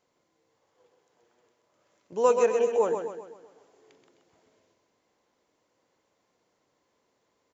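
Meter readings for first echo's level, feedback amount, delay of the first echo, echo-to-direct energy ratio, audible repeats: −6.0 dB, 47%, 129 ms, −5.0 dB, 5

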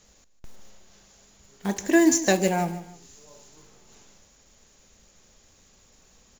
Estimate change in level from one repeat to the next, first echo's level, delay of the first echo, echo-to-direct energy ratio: −9.0 dB, −15.0 dB, 152 ms, −14.5 dB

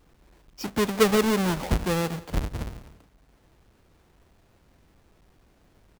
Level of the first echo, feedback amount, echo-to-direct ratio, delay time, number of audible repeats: −20.5 dB, 35%, −20.0 dB, 175 ms, 2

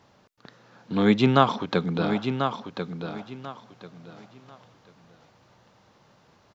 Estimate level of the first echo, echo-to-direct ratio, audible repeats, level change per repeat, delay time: −7.5 dB, −7.0 dB, 3, −12.5 dB, 1,041 ms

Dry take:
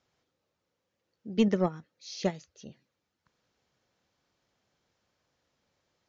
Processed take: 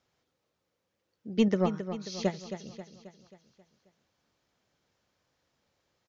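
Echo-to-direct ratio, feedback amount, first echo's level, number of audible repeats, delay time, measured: −8.5 dB, 52%, −10.0 dB, 5, 268 ms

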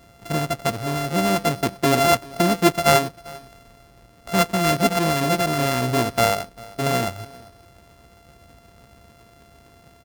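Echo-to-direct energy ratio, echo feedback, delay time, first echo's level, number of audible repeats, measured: −22.5 dB, repeats not evenly spaced, 396 ms, −22.5 dB, 1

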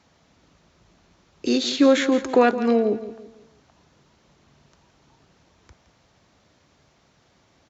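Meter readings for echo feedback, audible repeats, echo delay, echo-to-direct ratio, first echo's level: 37%, 3, 167 ms, −13.0 dB, −13.5 dB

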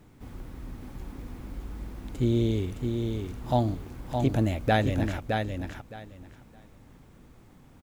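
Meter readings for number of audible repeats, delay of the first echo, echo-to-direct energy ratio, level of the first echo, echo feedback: 3, 615 ms, −5.0 dB, −5.0 dB, 18%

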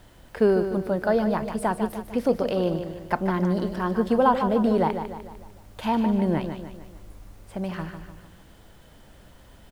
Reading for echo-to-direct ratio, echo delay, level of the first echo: −7.5 dB, 150 ms, −8.5 dB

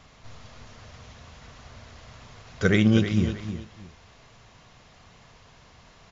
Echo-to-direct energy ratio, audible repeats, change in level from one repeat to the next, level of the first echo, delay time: −9.5 dB, 2, −11.5 dB, −10.0 dB, 316 ms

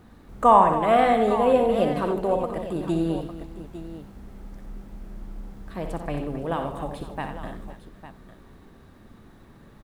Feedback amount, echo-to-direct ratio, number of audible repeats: repeats not evenly spaced, −4.0 dB, 5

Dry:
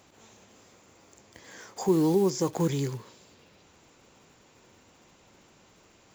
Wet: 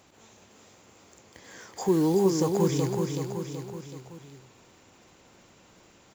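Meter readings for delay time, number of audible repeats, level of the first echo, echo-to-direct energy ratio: 377 ms, 4, −4.5 dB, −3.0 dB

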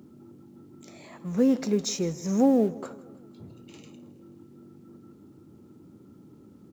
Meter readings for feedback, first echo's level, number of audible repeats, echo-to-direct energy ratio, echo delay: 55%, −20.0 dB, 3, −18.5 dB, 160 ms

